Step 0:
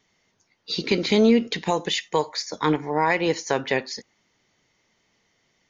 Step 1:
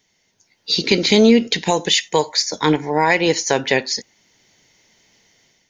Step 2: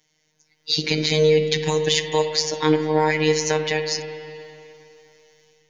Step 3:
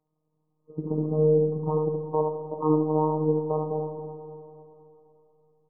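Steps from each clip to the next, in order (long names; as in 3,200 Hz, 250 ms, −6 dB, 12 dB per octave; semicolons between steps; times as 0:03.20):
high-shelf EQ 4,200 Hz +9.5 dB; automatic gain control gain up to 8 dB; parametric band 1,200 Hz −9 dB 0.26 octaves
brickwall limiter −6.5 dBFS, peak gain reduction 5 dB; phases set to zero 154 Hz; spring reverb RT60 2.9 s, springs 41/52/60 ms, chirp 50 ms, DRR 7 dB; level −1 dB
linear-phase brick-wall low-pass 1,300 Hz; single-tap delay 72 ms −5.5 dB; level −4.5 dB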